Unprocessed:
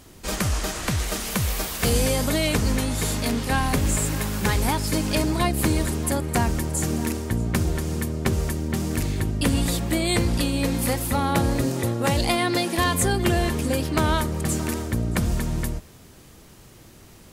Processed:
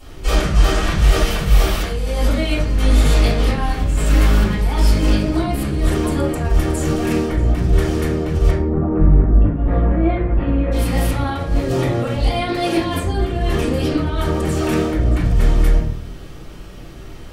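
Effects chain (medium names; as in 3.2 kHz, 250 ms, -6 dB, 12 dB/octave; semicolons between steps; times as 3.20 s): 8.49–10.71 s: low-pass 1.1 kHz -> 2.1 kHz 24 dB/octave; compressor with a negative ratio -25 dBFS, ratio -0.5; reverberation RT60 0.50 s, pre-delay 3 ms, DRR -11.5 dB; trim -7 dB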